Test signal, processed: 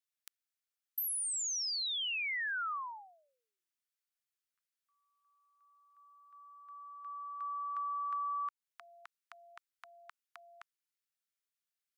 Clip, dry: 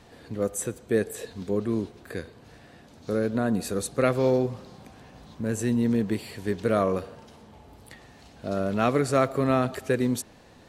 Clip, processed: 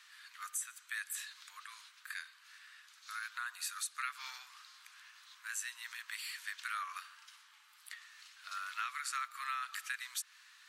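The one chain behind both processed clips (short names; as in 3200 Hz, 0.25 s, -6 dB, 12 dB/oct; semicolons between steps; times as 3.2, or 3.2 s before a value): steep high-pass 1200 Hz 48 dB/oct; compressor 6:1, threshold -36 dBFS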